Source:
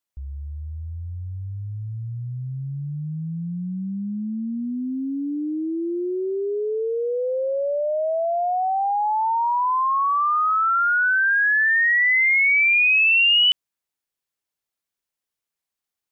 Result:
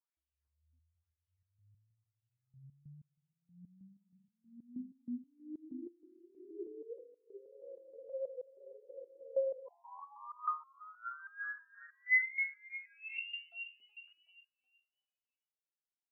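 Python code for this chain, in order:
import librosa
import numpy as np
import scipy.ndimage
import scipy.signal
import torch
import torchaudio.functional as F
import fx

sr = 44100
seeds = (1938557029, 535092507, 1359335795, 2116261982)

y = fx.high_shelf(x, sr, hz=3300.0, db=-11.5)
y = fx.rider(y, sr, range_db=3, speed_s=0.5)
y = fx.echo_wet_bandpass(y, sr, ms=279, feedback_pct=44, hz=540.0, wet_db=-8)
y = fx.filter_lfo_bandpass(y, sr, shape='sine', hz=1.0, low_hz=250.0, high_hz=3000.0, q=7.3)
y = fx.echo_feedback(y, sr, ms=373, feedback_pct=40, wet_db=-16)
y = fx.spec_freeze(y, sr, seeds[0], at_s=7.5, hold_s=2.18)
y = fx.resonator_held(y, sr, hz=6.3, low_hz=120.0, high_hz=690.0)
y = F.gain(torch.from_numpy(y), 7.0).numpy()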